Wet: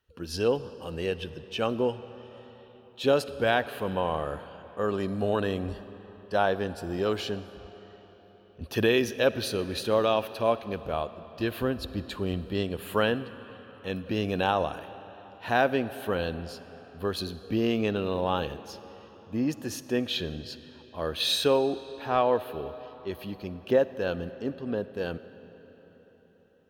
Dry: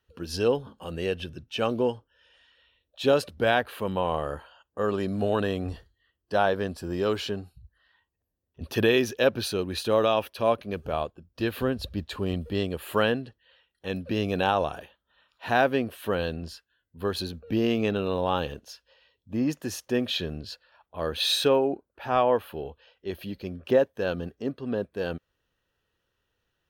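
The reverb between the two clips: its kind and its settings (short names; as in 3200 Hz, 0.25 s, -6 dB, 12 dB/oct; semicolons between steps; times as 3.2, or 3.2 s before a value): digital reverb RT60 4.7 s, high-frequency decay 0.75×, pre-delay 15 ms, DRR 14 dB; gain -1.5 dB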